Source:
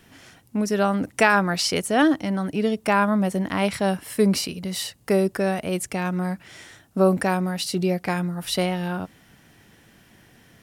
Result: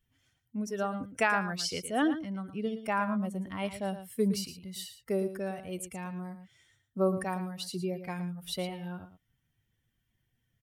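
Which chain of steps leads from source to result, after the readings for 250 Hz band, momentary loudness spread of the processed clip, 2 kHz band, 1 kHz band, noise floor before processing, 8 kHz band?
-10.5 dB, 12 LU, -10.0 dB, -10.0 dB, -56 dBFS, -10.5 dB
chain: expander on every frequency bin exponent 1.5; delay 113 ms -11.5 dB; trim -8 dB

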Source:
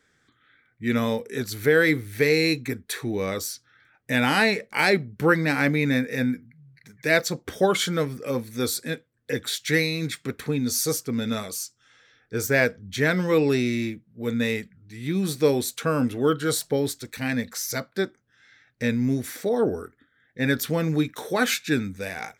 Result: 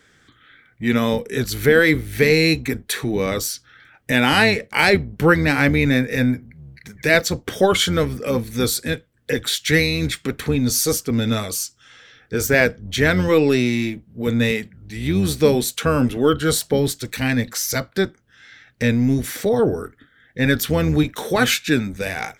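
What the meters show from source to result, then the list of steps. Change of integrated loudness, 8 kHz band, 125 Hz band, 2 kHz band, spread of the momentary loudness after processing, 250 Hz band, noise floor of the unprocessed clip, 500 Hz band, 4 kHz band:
+5.5 dB, +5.5 dB, +7.0 dB, +5.0 dB, 10 LU, +5.5 dB, -67 dBFS, +5.0 dB, +6.5 dB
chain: octave divider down 1 oct, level -6 dB; peaking EQ 3 kHz +4.5 dB 0.33 oct; in parallel at +0.5 dB: compression, threshold -36 dBFS, peak gain reduction 20.5 dB; on the sum: trim +3.5 dB

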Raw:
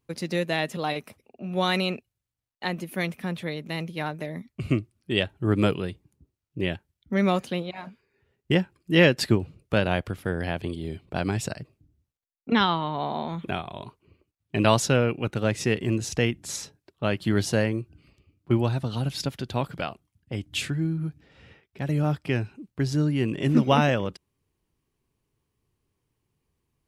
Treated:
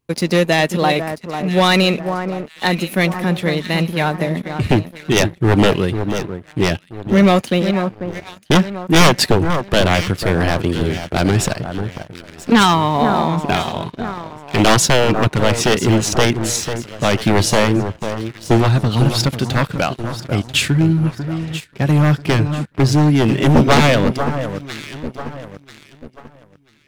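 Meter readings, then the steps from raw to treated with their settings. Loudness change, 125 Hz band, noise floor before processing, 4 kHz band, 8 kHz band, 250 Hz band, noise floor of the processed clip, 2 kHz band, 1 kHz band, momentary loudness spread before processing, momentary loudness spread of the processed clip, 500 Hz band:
+10.0 dB, +11.0 dB, -83 dBFS, +12.0 dB, +14.0 dB, +10.5 dB, -47 dBFS, +10.5 dB, +12.0 dB, 14 LU, 13 LU, +10.0 dB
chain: one-sided wavefolder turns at -19.5 dBFS; echo whose repeats swap between lows and highs 494 ms, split 1.6 kHz, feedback 63%, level -9 dB; waveshaping leveller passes 2; trim +5.5 dB

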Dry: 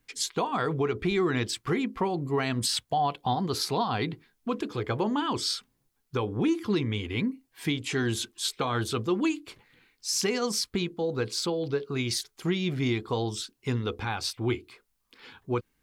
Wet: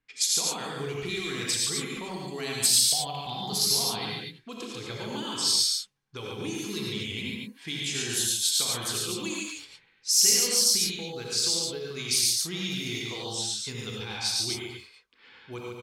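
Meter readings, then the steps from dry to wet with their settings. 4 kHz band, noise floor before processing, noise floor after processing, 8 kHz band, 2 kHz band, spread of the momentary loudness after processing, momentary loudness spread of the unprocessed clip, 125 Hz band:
+7.5 dB, -74 dBFS, -62 dBFS, +11.5 dB, -1.0 dB, 17 LU, 6 LU, -7.5 dB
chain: dynamic bell 1.2 kHz, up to -6 dB, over -41 dBFS, Q 0.77; level-controlled noise filter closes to 1.9 kHz, open at -25.5 dBFS; pre-emphasis filter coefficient 0.9; on a send: loudspeakers at several distances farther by 29 m -12 dB, 49 m -3 dB; on the sum: gated-style reverb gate 130 ms rising, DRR -0.5 dB; trim +7.5 dB

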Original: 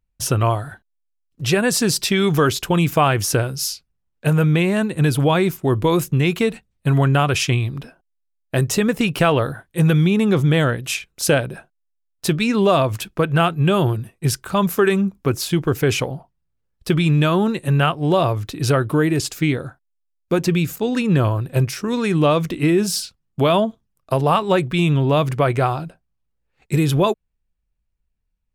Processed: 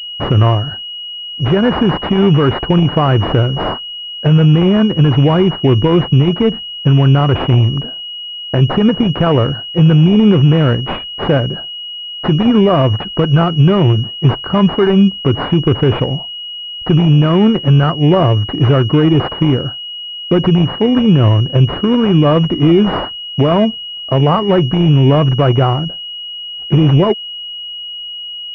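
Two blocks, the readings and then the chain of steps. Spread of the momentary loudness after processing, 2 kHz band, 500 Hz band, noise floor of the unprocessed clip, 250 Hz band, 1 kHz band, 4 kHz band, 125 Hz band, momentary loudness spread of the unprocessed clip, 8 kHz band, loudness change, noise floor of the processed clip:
14 LU, -1.5 dB, +5.0 dB, -73 dBFS, +8.0 dB, +3.0 dB, +10.5 dB, +8.5 dB, 8 LU, under -20 dB, +6.5 dB, -27 dBFS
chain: dynamic bell 790 Hz, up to -6 dB, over -31 dBFS, Q 0.8; loudness maximiser +12 dB; class-D stage that switches slowly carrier 2.9 kHz; trim -1 dB

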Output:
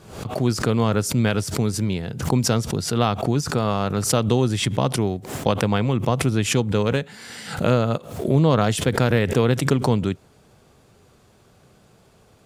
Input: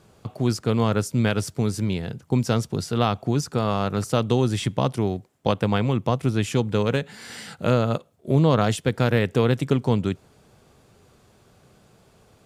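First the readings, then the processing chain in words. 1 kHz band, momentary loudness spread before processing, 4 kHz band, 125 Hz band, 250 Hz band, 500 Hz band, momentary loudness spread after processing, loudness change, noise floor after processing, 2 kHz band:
+2.0 dB, 7 LU, +4.0 dB, +1.5 dB, +1.5 dB, +1.5 dB, 7 LU, +2.0 dB, -55 dBFS, +3.0 dB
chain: swell ahead of each attack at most 86 dB/s; trim +1 dB

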